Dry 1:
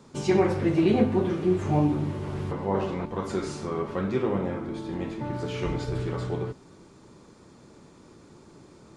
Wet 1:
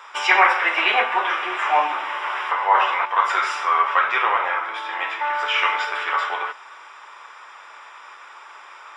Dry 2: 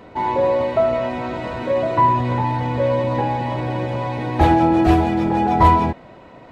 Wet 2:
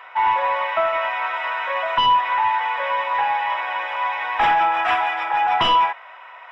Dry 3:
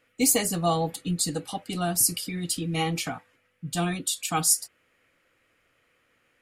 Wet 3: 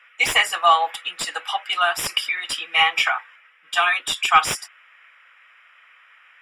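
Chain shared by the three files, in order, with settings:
HPF 1000 Hz 24 dB/oct; sine folder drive 11 dB, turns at -7.5 dBFS; polynomial smoothing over 25 samples; match loudness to -20 LUFS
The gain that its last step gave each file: +7.0, -4.5, +3.5 dB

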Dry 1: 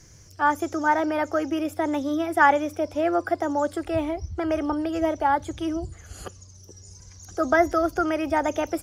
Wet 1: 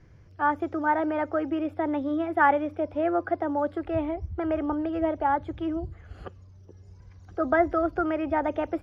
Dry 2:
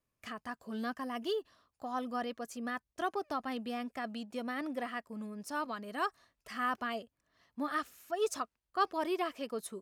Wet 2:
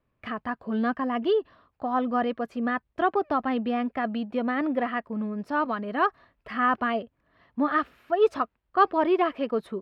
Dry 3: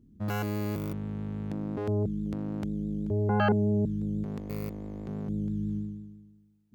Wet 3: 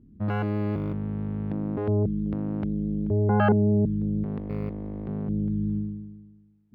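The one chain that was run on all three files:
air absorption 430 m; match loudness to -27 LUFS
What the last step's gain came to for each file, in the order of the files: -1.0, +12.5, +5.0 dB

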